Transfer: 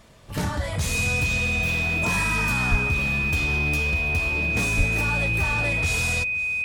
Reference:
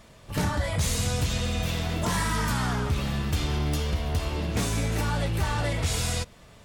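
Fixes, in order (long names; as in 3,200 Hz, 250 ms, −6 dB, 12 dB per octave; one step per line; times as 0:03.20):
notch filter 2,500 Hz, Q 30
0:02.70–0:02.82: high-pass filter 140 Hz 24 dB per octave
0:04.77–0:04.89: high-pass filter 140 Hz 24 dB per octave
echo removal 519 ms −20 dB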